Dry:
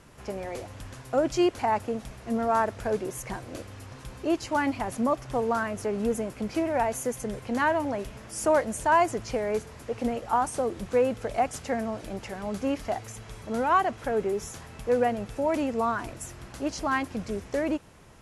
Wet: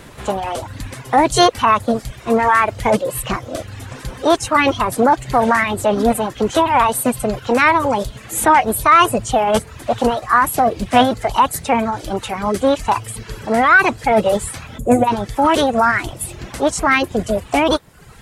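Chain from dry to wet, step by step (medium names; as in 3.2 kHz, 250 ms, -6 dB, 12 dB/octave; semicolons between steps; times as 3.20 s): time-frequency box 14.79–15.07 s, 570–4800 Hz -17 dB; reverb removal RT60 0.88 s; formant shift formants +5 st; in parallel at +2.5 dB: peak limiter -20.5 dBFS, peak gain reduction 8.5 dB; on the sum: trim +7 dB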